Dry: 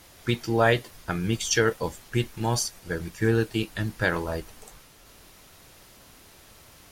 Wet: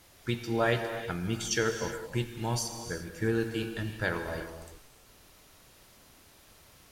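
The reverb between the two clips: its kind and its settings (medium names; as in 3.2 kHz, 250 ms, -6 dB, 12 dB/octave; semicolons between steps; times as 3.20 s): gated-style reverb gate 390 ms flat, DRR 6 dB; trim -6.5 dB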